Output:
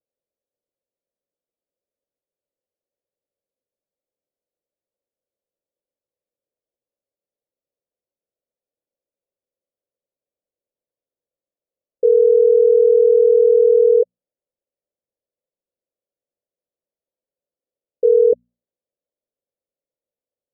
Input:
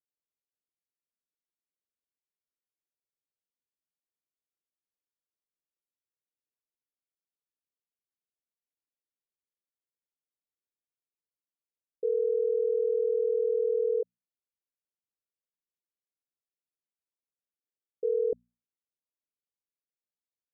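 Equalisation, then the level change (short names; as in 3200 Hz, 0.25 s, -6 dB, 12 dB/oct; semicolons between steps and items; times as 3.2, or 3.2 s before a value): synth low-pass 550 Hz, resonance Q 4.9; +5.5 dB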